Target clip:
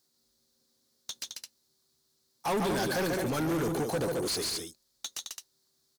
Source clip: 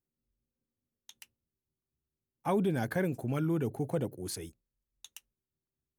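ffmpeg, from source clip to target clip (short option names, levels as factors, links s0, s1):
-filter_complex "[0:a]highshelf=f=3400:t=q:w=3:g=8,aecho=1:1:142.9|215.7:0.447|0.282,asplit=2[s0][s1];[s1]highpass=f=720:p=1,volume=28.2,asoftclip=type=tanh:threshold=0.15[s2];[s0][s2]amix=inputs=2:normalize=0,lowpass=f=4500:p=1,volume=0.501,volume=0.531"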